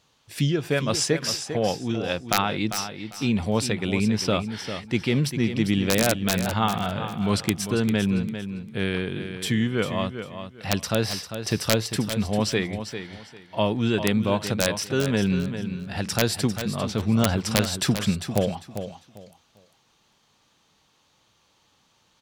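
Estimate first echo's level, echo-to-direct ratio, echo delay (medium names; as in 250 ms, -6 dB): -9.5 dB, -9.5 dB, 398 ms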